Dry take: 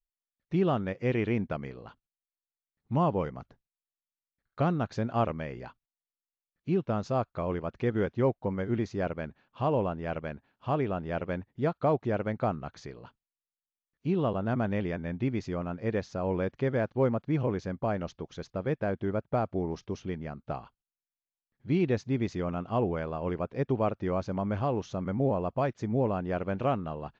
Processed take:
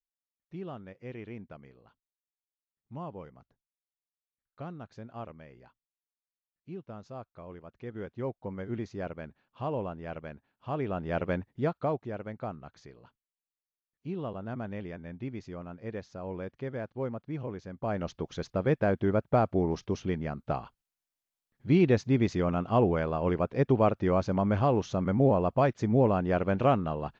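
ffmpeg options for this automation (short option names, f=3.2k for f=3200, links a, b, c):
-af "volume=15dB,afade=t=in:st=7.76:d=0.93:silence=0.375837,afade=t=in:st=10.7:d=0.58:silence=0.375837,afade=t=out:st=11.28:d=0.79:silence=0.281838,afade=t=in:st=17.72:d=0.51:silence=0.251189"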